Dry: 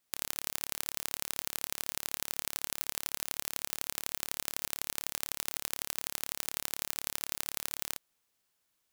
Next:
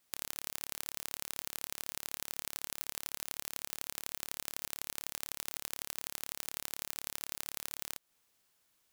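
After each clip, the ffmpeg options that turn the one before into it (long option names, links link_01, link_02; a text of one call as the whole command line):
ffmpeg -i in.wav -af "acompressor=threshold=-40dB:ratio=2.5,volume=4dB" out.wav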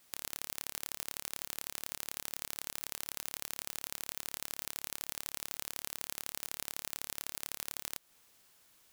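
ffmpeg -i in.wav -af "aeval=exprs='(mod(6.68*val(0)+1,2)-1)/6.68':channel_layout=same,volume=9dB" out.wav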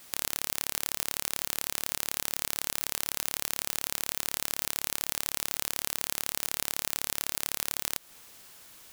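ffmpeg -i in.wav -af "alimiter=level_in=14.5dB:limit=-1dB:release=50:level=0:latency=1,volume=-1dB" out.wav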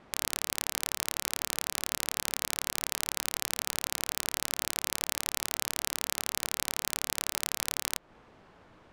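ffmpeg -i in.wav -af "adynamicsmooth=sensitivity=4:basefreq=1100,volume=8dB" out.wav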